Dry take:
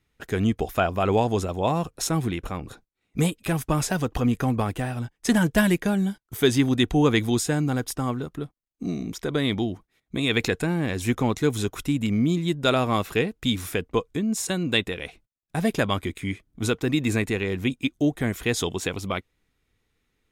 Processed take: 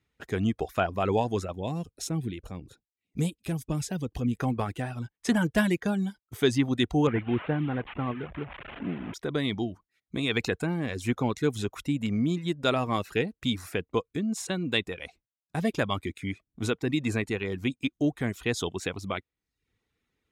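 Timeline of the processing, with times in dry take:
0:01.55–0:04.35: parametric band 1,200 Hz −12 dB 2.2 octaves
0:07.07–0:09.14: linear delta modulator 16 kbit/s, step −29.5 dBFS
0:16.79–0:17.31: linear-phase brick-wall low-pass 13,000 Hz
whole clip: reverb reduction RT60 0.51 s; high-pass filter 53 Hz; high-shelf EQ 10,000 Hz −11 dB; level −3.5 dB

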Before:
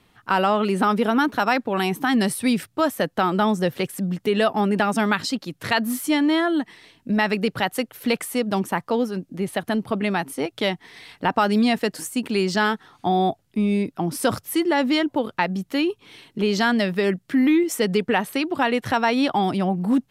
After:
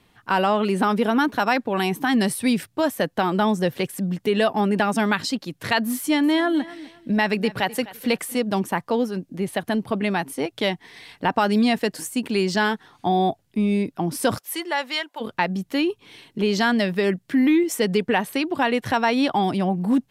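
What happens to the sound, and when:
0:05.98–0:08.37: repeating echo 254 ms, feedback 26%, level −18 dB
0:14.37–0:15.20: high-pass filter 480 Hz → 1,200 Hz
whole clip: notch filter 1,300 Hz, Q 13

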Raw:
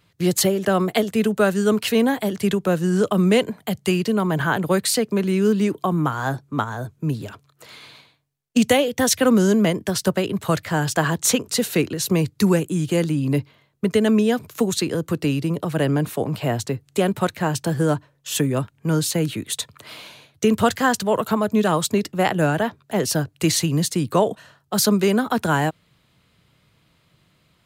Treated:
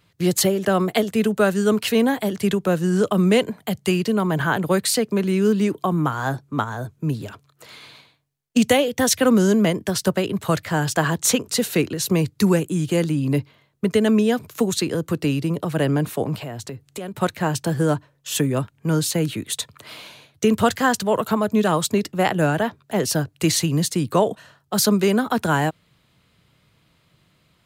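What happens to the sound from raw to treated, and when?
0:16.35–0:17.22: downward compressor 4 to 1, threshold −30 dBFS

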